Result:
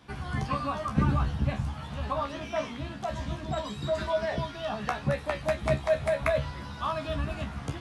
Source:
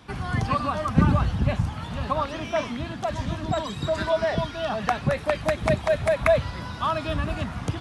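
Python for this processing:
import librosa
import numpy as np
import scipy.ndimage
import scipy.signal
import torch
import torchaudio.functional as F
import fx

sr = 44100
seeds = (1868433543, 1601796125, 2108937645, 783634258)

y = fx.comb_fb(x, sr, f0_hz=70.0, decay_s=0.16, harmonics='all', damping=0.0, mix_pct=100)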